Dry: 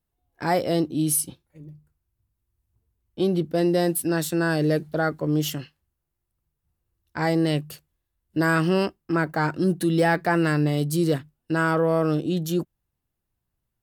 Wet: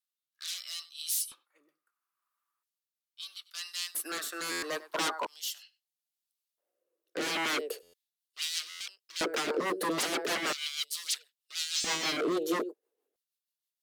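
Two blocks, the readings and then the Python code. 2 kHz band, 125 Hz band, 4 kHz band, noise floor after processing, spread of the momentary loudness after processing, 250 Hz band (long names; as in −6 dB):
−7.5 dB, −30.0 dB, +3.0 dB, below −85 dBFS, 12 LU, −16.5 dB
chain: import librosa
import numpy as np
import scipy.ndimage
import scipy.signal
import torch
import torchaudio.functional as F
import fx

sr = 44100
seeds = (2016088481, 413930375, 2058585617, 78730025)

p1 = x + fx.echo_single(x, sr, ms=97, db=-21.5, dry=0)
p2 = fx.filter_sweep_highpass(p1, sr, from_hz=1200.0, to_hz=450.0, start_s=4.44, end_s=7.41, q=7.9)
p3 = scipy.signal.sosfilt(scipy.signal.butter(2, 220.0, 'highpass', fs=sr, output='sos'), p2)
p4 = 10.0 ** (-24.5 / 20.0) * (np.abs((p3 / 10.0 ** (-24.5 / 20.0) + 3.0) % 4.0 - 2.0) - 1.0)
p5 = fx.filter_lfo_highpass(p4, sr, shape='square', hz=0.38, low_hz=300.0, high_hz=3900.0, q=1.5)
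p6 = fx.rotary_switch(p5, sr, hz=0.75, then_hz=6.3, switch_at_s=7.49)
y = fx.buffer_glitch(p6, sr, at_s=(4.51, 7.82, 8.69), block=512, repeats=9)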